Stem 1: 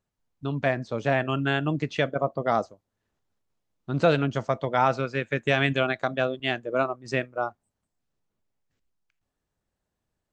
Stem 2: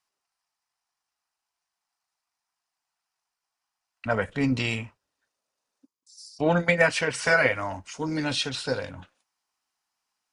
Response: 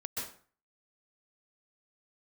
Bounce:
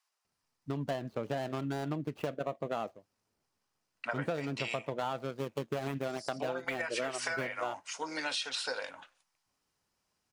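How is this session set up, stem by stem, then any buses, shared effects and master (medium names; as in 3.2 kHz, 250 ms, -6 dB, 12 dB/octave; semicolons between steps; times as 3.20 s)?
0.0 dB, 0.25 s, no send, median filter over 25 samples; bass shelf 87 Hz -11.5 dB
0.0 dB, 0.00 s, no send, high-pass 670 Hz 12 dB/octave; compression, threshold -26 dBFS, peak gain reduction 9 dB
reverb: none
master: compression 10:1, threshold -31 dBFS, peak gain reduction 15 dB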